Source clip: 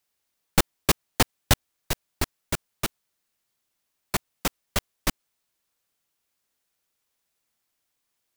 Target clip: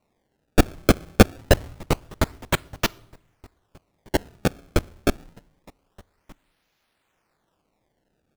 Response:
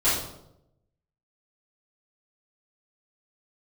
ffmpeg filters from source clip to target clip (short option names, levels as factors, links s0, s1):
-filter_complex "[0:a]asplit=2[s0][s1];[s1]adelay=1224,volume=0.0562,highshelf=f=4000:g=-27.6[s2];[s0][s2]amix=inputs=2:normalize=0,asplit=2[s3][s4];[1:a]atrim=start_sample=2205[s5];[s4][s5]afir=irnorm=-1:irlink=0,volume=0.0158[s6];[s3][s6]amix=inputs=2:normalize=0,acrusher=samples=26:mix=1:aa=0.000001:lfo=1:lforange=41.6:lforate=0.26,volume=2"